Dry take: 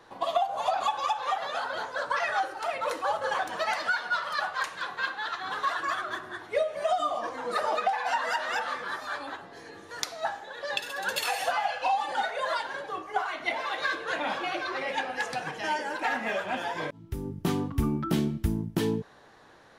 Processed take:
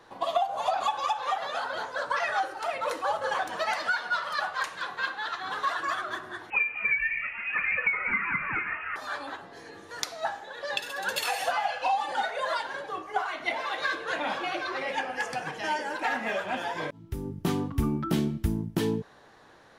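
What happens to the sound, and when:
6.50–8.96 s: frequency inversion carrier 3 kHz
14.97–15.46 s: band-stop 3.9 kHz, Q 5.1

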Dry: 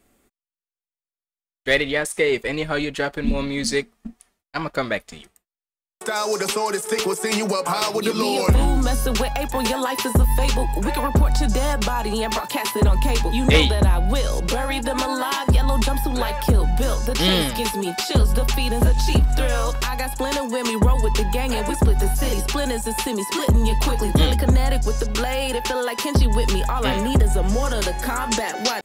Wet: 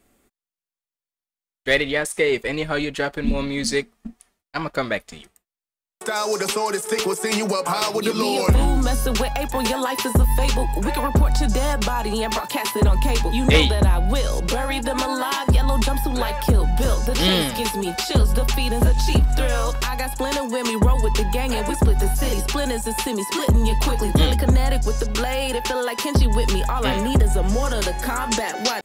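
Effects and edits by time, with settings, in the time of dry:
16.40–16.89 s: echo throw 360 ms, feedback 45%, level -9.5 dB

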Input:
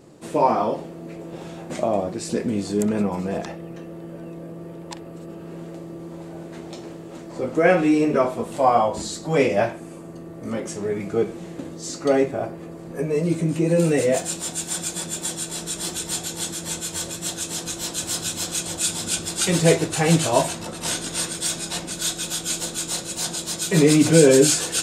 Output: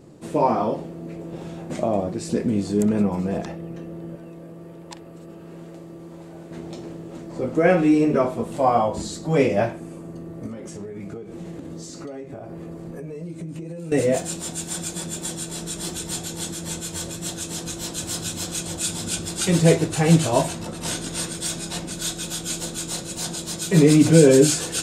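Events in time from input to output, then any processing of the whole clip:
4.15–6.51 s: bass shelf 480 Hz -7.5 dB
10.46–13.92 s: compression 10:1, threshold -32 dBFS
whole clip: bass shelf 350 Hz +7.5 dB; trim -3 dB

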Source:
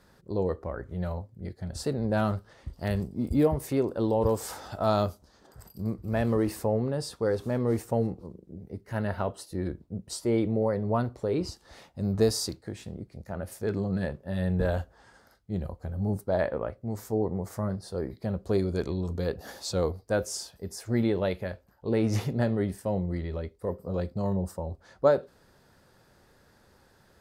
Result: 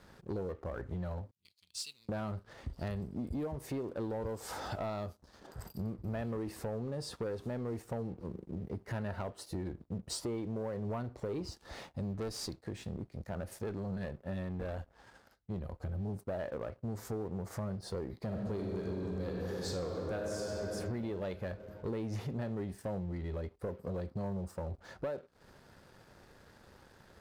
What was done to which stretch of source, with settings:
1.31–2.09 s: elliptic high-pass 2.6 kHz
12.13–15.80 s: valve stage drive 22 dB, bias 0.7
18.17–20.69 s: reverb throw, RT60 2.9 s, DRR -1.5 dB
whole clip: treble shelf 6.7 kHz -7.5 dB; compression 10:1, threshold -37 dBFS; waveshaping leveller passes 2; trim -3.5 dB

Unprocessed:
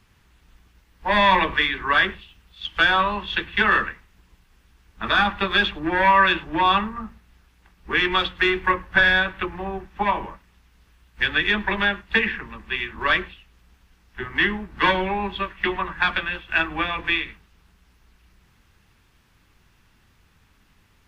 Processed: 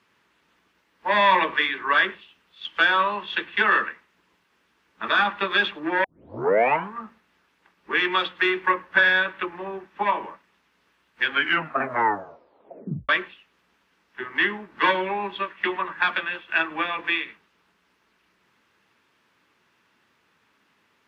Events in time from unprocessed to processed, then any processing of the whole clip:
6.04 s: tape start 0.91 s
11.22 s: tape stop 1.87 s
whole clip: high-pass 310 Hz 12 dB/octave; treble shelf 5.2 kHz -11.5 dB; band-stop 760 Hz, Q 12

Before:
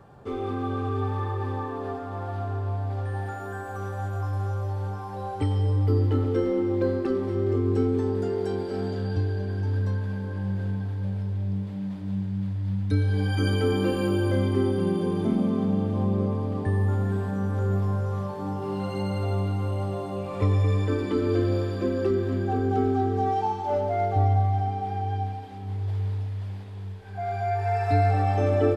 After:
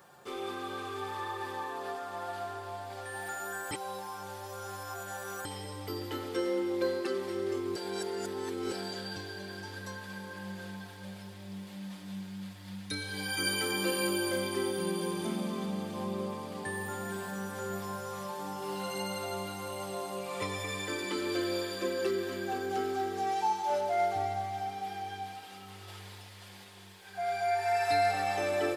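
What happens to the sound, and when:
3.71–5.45 s: reverse
7.76–8.72 s: reverse
25.36–26.00 s: small resonant body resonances 1.3/2.8 kHz, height 11 dB
whole clip: tilt EQ +4.5 dB/octave; comb 5.6 ms, depth 51%; trim -3 dB

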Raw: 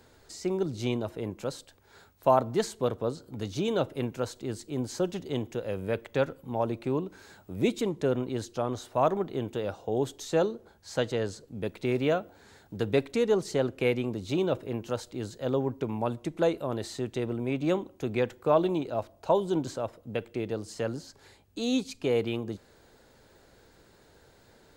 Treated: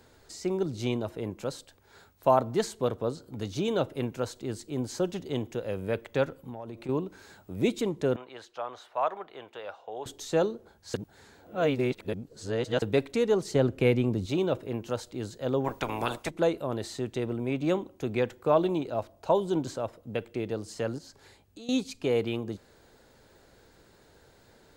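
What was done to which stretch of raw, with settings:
6.29–6.89 s: compression 10:1, threshold -35 dBFS
8.16–10.06 s: three-band isolator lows -24 dB, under 590 Hz, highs -15 dB, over 3.7 kHz
10.94–12.82 s: reverse
13.55–14.26 s: bass shelf 260 Hz +9 dB
15.64–16.29 s: spectral peaks clipped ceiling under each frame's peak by 24 dB
20.98–21.69 s: compression 4:1, threshold -45 dBFS

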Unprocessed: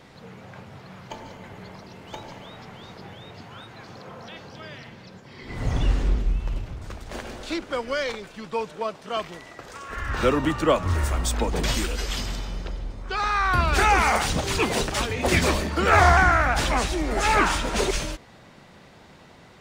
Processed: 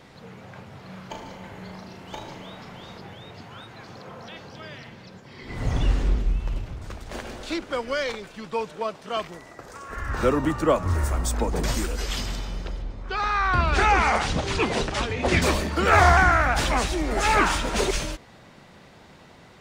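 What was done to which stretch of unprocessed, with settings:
0.78–2.99 s: flutter echo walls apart 6.4 m, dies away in 0.38 s
9.27–12.01 s: peaking EQ 3.1 kHz -7.5 dB 1.2 oct
12.82–15.42 s: distance through air 72 m

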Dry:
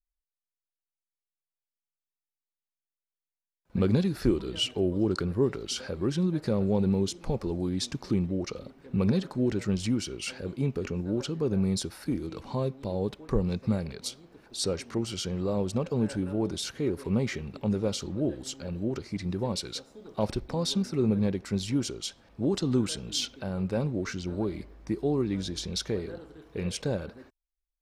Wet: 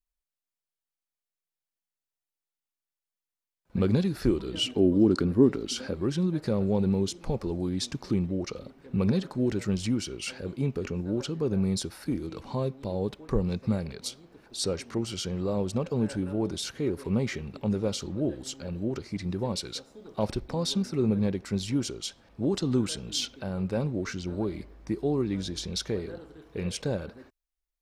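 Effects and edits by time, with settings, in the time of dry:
4.53–5.94 s: peaking EQ 260 Hz +10.5 dB
9.39–9.80 s: treble shelf 9.9 kHz +6 dB

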